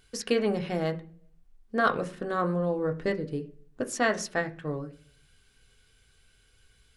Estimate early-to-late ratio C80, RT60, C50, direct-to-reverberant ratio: 21.0 dB, 0.50 s, 16.5 dB, 4.0 dB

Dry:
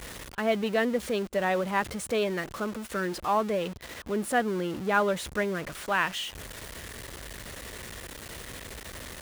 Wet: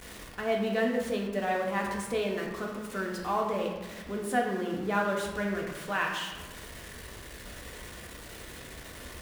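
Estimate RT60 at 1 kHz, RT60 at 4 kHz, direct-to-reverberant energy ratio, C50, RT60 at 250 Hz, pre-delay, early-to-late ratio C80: 1.2 s, 0.75 s, −0.5 dB, 3.5 dB, 1.6 s, 3 ms, 5.5 dB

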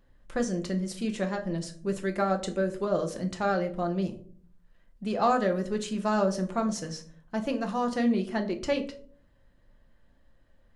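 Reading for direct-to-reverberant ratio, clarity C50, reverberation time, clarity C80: 4.0 dB, 14.5 dB, 0.50 s, 17.5 dB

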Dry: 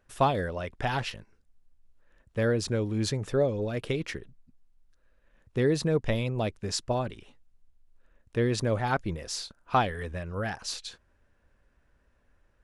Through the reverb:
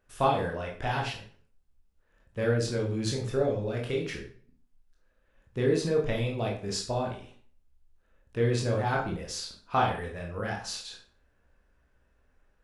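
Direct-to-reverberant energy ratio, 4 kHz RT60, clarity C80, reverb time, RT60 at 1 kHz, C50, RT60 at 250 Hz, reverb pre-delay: −2.0 dB, 0.35 s, 10.5 dB, 0.45 s, 0.45 s, 6.0 dB, 0.50 s, 18 ms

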